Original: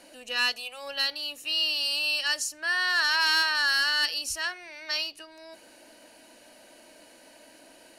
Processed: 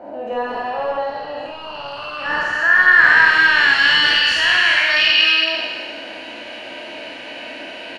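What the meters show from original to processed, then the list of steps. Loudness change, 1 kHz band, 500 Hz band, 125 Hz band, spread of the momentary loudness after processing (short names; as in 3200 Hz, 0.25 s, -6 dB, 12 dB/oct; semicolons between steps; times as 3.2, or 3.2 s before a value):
+12.5 dB, +13.0 dB, +17.0 dB, n/a, 21 LU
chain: spectral trails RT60 1.72 s; HPF 60 Hz; notches 60/120/180/240/300 Hz; in parallel at -1.5 dB: negative-ratio compressor -33 dBFS, ratio -1; on the sum: wavefolder -17.5 dBFS; on a send: loudspeakers at several distances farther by 17 m -1 dB, 70 m -11 dB; on the sum: low-pass sweep 770 Hz -> 2800 Hz, 1.41–3.91; gain +4.5 dB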